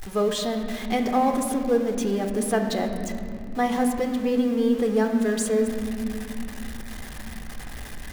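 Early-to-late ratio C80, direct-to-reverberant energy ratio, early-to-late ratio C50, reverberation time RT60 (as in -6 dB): 7.0 dB, 4.0 dB, 6.0 dB, not exponential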